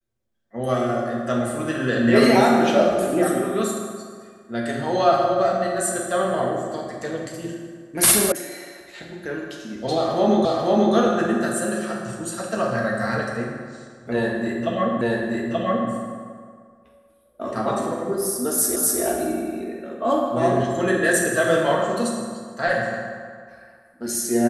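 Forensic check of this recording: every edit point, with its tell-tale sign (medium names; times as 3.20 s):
8.32 s: sound stops dead
10.45 s: repeat of the last 0.49 s
15.01 s: repeat of the last 0.88 s
18.76 s: repeat of the last 0.25 s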